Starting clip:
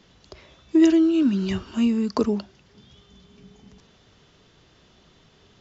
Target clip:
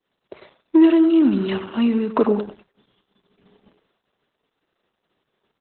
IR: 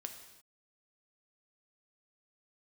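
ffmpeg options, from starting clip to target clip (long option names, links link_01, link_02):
-filter_complex "[0:a]asplit=2[link_01][link_02];[link_02]adelay=97,lowpass=frequency=2100:poles=1,volume=-10dB,asplit=2[link_03][link_04];[link_04]adelay=97,lowpass=frequency=2100:poles=1,volume=0.24,asplit=2[link_05][link_06];[link_06]adelay=97,lowpass=frequency=2100:poles=1,volume=0.24[link_07];[link_01][link_03][link_05][link_07]amix=inputs=4:normalize=0,asplit=2[link_08][link_09];[link_09]highpass=frequency=720:poles=1,volume=15dB,asoftclip=type=tanh:threshold=-6dB[link_10];[link_08][link_10]amix=inputs=2:normalize=0,lowpass=frequency=1200:poles=1,volume=-6dB,agate=range=-33dB:threshold=-41dB:ratio=3:detection=peak,highpass=150,volume=3dB" -ar 48000 -c:a libopus -b:a 8k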